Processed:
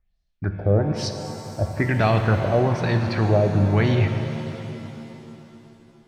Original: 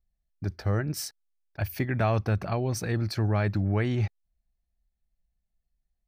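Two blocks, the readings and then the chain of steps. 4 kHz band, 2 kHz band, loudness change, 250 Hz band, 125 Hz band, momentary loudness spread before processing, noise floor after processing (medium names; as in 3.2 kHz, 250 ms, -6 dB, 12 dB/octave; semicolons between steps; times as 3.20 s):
+6.5 dB, +7.5 dB, +7.0 dB, +7.5 dB, +6.5 dB, 10 LU, -68 dBFS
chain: LFO low-pass sine 1.1 Hz 540–5100 Hz; pitch-shifted reverb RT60 3.2 s, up +7 st, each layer -8 dB, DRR 5.5 dB; trim +5.5 dB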